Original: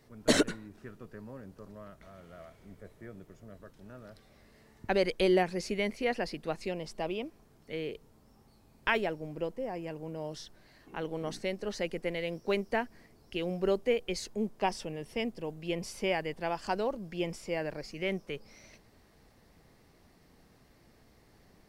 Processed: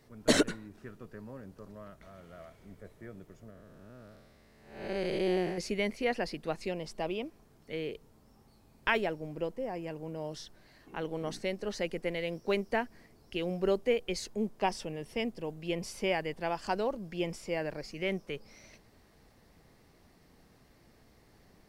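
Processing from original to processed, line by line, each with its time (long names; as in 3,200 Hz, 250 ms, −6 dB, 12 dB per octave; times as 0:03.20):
0:03.50–0:05.58: spectrum smeared in time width 266 ms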